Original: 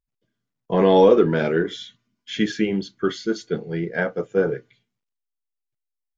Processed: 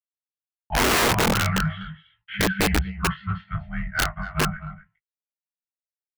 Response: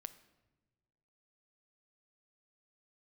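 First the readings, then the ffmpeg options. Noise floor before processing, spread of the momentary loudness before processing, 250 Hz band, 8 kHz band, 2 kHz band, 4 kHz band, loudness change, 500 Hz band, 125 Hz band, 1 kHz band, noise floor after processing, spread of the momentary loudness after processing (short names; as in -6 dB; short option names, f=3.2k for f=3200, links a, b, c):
-83 dBFS, 13 LU, -5.0 dB, n/a, +5.0 dB, +6.0 dB, -2.5 dB, -11.5 dB, +3.0 dB, +1.5 dB, under -85 dBFS, 17 LU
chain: -af "afftfilt=real='re*(1-between(b*sr/4096,330,740))':imag='im*(1-between(b*sr/4096,330,740))':win_size=4096:overlap=0.75,agate=range=-59dB:threshold=-50dB:ratio=16:detection=peak,highpass=f=200:t=q:w=0.5412,highpass=f=200:t=q:w=1.307,lowpass=f=2.6k:t=q:w=0.5176,lowpass=f=2.6k:t=q:w=0.7071,lowpass=f=2.6k:t=q:w=1.932,afreqshift=-130,asoftclip=type=tanh:threshold=-18dB,adynamicequalizer=threshold=0.00708:dfrequency=160:dqfactor=6:tfrequency=160:tqfactor=6:attack=5:release=100:ratio=0.375:range=2.5:mode=boostabove:tftype=bell,flanger=delay=15.5:depth=5.2:speed=0.36,aecho=1:1:245:0.224,aeval=exprs='(mod(14.1*val(0)+1,2)-1)/14.1':c=same,volume=8dB"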